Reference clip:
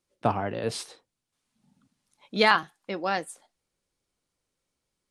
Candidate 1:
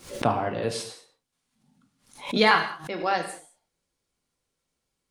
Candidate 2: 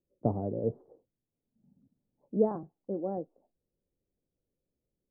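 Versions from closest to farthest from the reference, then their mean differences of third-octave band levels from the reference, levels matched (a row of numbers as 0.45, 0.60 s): 1, 2; 5.5, 12.0 dB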